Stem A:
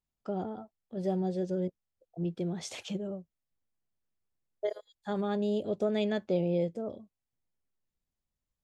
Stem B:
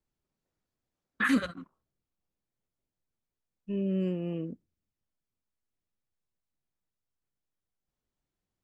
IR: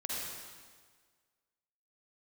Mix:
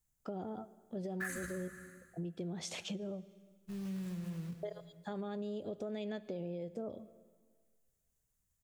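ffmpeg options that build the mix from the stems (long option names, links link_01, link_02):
-filter_complex "[0:a]alimiter=level_in=3.5dB:limit=-24dB:level=0:latency=1:release=167,volume=-3.5dB,volume=-0.5dB,asplit=2[link_01][link_02];[link_02]volume=-21dB[link_03];[1:a]firequalizer=gain_entry='entry(140,0);entry(270,-28);entry(420,-18);entry(620,-22);entry(1700,-5);entry(3300,-23);entry(6600,7)':delay=0.05:min_phase=1,acrusher=bits=4:mode=log:mix=0:aa=0.000001,volume=2dB,asplit=2[link_04][link_05];[link_05]volume=-8dB[link_06];[2:a]atrim=start_sample=2205[link_07];[link_03][link_06]amix=inputs=2:normalize=0[link_08];[link_08][link_07]afir=irnorm=-1:irlink=0[link_09];[link_01][link_04][link_09]amix=inputs=3:normalize=0,acompressor=threshold=-38dB:ratio=4"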